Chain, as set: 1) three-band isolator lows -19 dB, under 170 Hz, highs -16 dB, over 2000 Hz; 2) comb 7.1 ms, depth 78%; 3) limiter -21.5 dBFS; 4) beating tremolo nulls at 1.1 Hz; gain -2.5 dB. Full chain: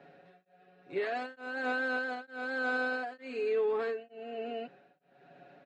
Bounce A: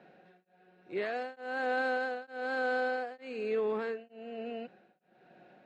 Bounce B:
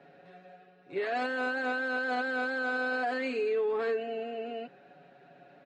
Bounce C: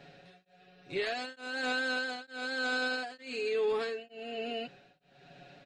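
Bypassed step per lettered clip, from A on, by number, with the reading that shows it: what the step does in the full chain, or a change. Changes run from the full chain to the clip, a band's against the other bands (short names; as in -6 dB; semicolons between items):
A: 2, 1 kHz band +3.0 dB; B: 4, crest factor change -2.5 dB; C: 1, 4 kHz band +11.5 dB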